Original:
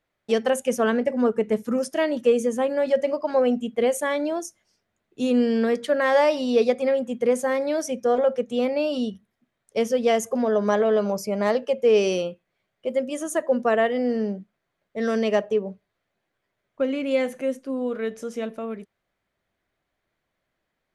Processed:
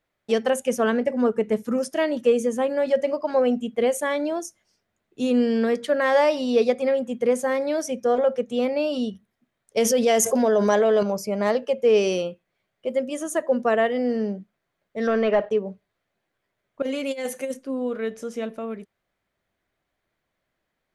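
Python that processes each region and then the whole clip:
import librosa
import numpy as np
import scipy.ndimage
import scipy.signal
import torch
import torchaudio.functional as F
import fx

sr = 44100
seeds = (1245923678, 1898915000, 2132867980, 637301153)

y = fx.chain(x, sr, fx.bass_treble(bass_db=-5, treble_db=5),
    fx.notch(hz=1200.0, q=10.0),
    fx.env_flatten(amount_pct=70), at=(9.77, 11.03))
y = fx.chain(y, sr, fx.low_shelf(hz=370.0, db=-10.0),
    fx.leveller(passes=2),
    fx.lowpass(hz=2100.0, slope=12), at=(15.07, 15.51))
y = fx.chain(y, sr, fx.bass_treble(bass_db=-9, treble_db=11),
    fx.notch_comb(f0_hz=330.0),
    fx.over_compress(threshold_db=-26.0, ratio=-0.5), at=(16.82, 17.54))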